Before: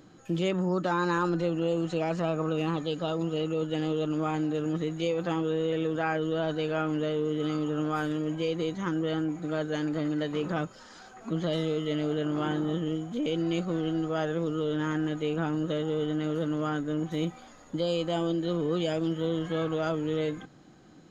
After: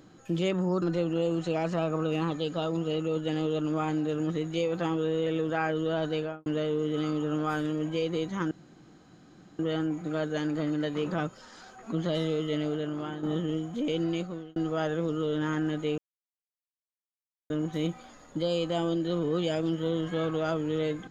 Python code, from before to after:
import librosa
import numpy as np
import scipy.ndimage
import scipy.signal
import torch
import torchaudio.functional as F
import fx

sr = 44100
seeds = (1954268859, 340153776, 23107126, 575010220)

y = fx.studio_fade_out(x, sr, start_s=6.61, length_s=0.31)
y = fx.edit(y, sr, fx.cut(start_s=0.82, length_s=0.46),
    fx.insert_room_tone(at_s=8.97, length_s=1.08),
    fx.fade_out_to(start_s=11.93, length_s=0.68, floor_db=-9.5),
    fx.fade_out_span(start_s=13.43, length_s=0.51),
    fx.silence(start_s=15.36, length_s=1.52), tone=tone)